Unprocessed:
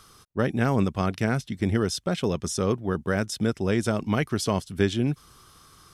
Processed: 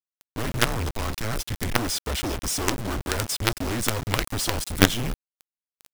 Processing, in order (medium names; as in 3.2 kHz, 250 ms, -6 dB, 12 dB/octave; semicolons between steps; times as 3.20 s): treble shelf 6.2 kHz +9.5 dB; frequency shift -110 Hz; companded quantiser 2-bit; trim -1 dB